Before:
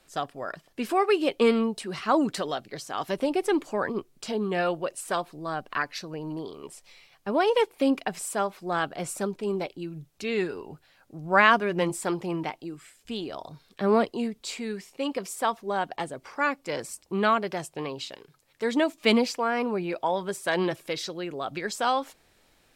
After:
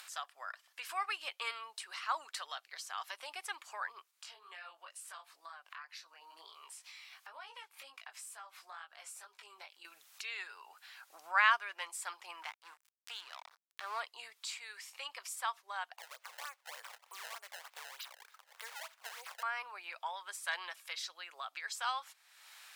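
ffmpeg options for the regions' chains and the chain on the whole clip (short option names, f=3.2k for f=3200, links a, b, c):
-filter_complex "[0:a]asettb=1/sr,asplit=3[a][b][c];[a]atrim=end=4.114[d];[b]atrim=start=4.11:end=9.85,asetpts=PTS-STARTPTS,afade=t=in:d=0.004:c=qsin,afade=t=out:st=5.736:d=0.004:c=qsin,acompressor=threshold=-52dB:ratio=2:attack=3.2:release=140:knee=1:detection=peak,flanger=delay=17.5:depth=4.2:speed=2.1[e];[c]atrim=start=9.846[f];[d][e]acrossfade=d=0.004:c1=hsin:c2=qsin[g];[g][f]acrossfade=d=0.004:c1=qsin:c2=hsin,asettb=1/sr,asplit=3[h][i][j];[h]atrim=end=12.424[k];[i]atrim=start=12.42:end=14,asetpts=PTS-STARTPTS,afade=t=in:d=0.004:c=qsin,afade=t=out:st=1.576:d=0.004:c=qsin,aeval=exprs='val(0)+0.00251*(sin(2*PI*60*n/s)+sin(2*PI*2*60*n/s)/2+sin(2*PI*3*60*n/s)/3+sin(2*PI*4*60*n/s)/4+sin(2*PI*5*60*n/s)/5)':c=same,aeval=exprs='sgn(val(0))*max(abs(val(0))-0.00891,0)':c=same[l];[j]atrim=start=13.996[m];[k][l]acrossfade=d=0.004:c1=hsin:c2=qsin[n];[n][m]acrossfade=d=0.004:c1=qsin:c2=hsin,asettb=1/sr,asplit=3[o][p][q];[o]atrim=end=15.984[r];[p]atrim=start=15.98:end=19.43,asetpts=PTS-STARTPTS,afade=t=in:d=0.004:c=qsin,afade=t=out:st=3.446:d=0.004:c=qsin,acompressor=threshold=-42dB:ratio=2:attack=3.2:release=140:knee=1:detection=peak,acrusher=samples=22:mix=1:aa=0.000001:lfo=1:lforange=35.2:lforate=3.3,lowshelf=f=380:t=q:w=3:g=-7.5[s];[q]atrim=start=19.426[t];[r][s]acrossfade=d=0.004:c1=hsin:c2=qsin[u];[u][t]acrossfade=d=0.004:c1=qsin:c2=hsin,highpass=f=1k:w=0.5412,highpass=f=1k:w=1.3066,acompressor=mode=upward:threshold=-33dB:ratio=2.5,volume=-7dB"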